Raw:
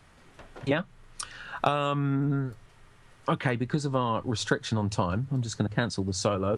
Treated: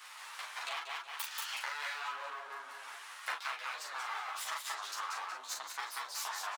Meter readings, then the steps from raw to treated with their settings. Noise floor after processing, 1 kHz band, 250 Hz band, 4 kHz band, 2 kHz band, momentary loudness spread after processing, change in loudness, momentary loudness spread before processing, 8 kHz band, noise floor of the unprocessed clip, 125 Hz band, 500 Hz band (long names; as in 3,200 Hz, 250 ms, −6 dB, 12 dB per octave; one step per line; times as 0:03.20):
−50 dBFS, −7.5 dB, below −40 dB, −3.5 dB, −3.5 dB, 7 LU, −10.5 dB, 10 LU, −3.5 dB, −56 dBFS, below −40 dB, −24.0 dB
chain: on a send: repeating echo 184 ms, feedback 28%, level −3.5 dB
on the sum: downward compressor 6 to 1, threshold −40 dBFS, peak gain reduction 20 dB
full-wave rectification
Chebyshev high-pass filter 960 Hz, order 3
in parallel at +2 dB: speech leveller within 4 dB 0.5 s
on the sum: double-tracking delay 39 ms −4.5 dB
string-ensemble chorus
level +6 dB